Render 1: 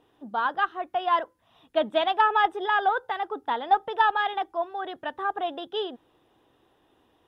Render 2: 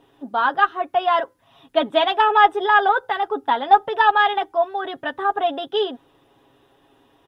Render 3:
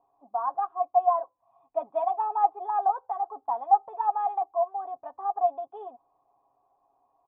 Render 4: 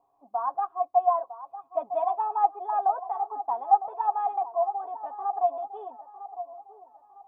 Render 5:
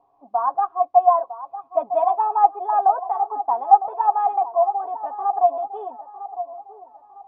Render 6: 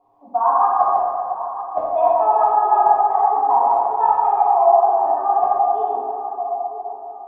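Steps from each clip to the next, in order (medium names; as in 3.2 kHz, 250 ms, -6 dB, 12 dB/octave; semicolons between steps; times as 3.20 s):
comb 7.3 ms, depth 57%; trim +6 dB
cascade formant filter a; bass shelf 91 Hz +8.5 dB
feedback echo behind a band-pass 955 ms, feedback 35%, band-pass 610 Hz, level -12 dB
distance through air 180 m; trim +8 dB
inverted gate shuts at -9 dBFS, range -40 dB; plate-style reverb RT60 2.5 s, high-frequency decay 0.4×, DRR -8 dB; trim -2 dB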